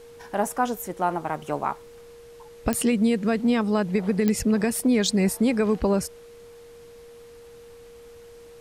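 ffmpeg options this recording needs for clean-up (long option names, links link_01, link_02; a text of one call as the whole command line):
ffmpeg -i in.wav -af "adeclick=threshold=4,bandreject=frequency=470:width=30,agate=range=-21dB:threshold=-38dB" out.wav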